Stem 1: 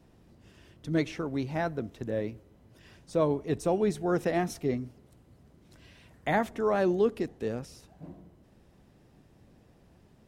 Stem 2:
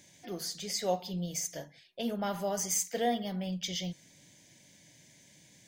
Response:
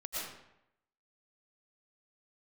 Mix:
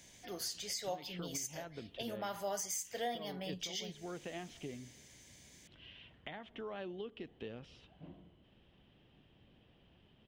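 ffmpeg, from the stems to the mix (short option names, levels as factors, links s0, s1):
-filter_complex "[0:a]acompressor=threshold=0.0178:ratio=6,lowpass=f=3100:t=q:w=7.3,volume=0.422[s0];[1:a]highpass=f=620:p=1,volume=1,asplit=2[s1][s2];[s2]apad=whole_len=457646[s3];[s0][s3]sidechaincompress=threshold=0.0158:ratio=8:attack=32:release=209[s4];[s4][s1]amix=inputs=2:normalize=0,alimiter=level_in=1.78:limit=0.0631:level=0:latency=1:release=349,volume=0.562"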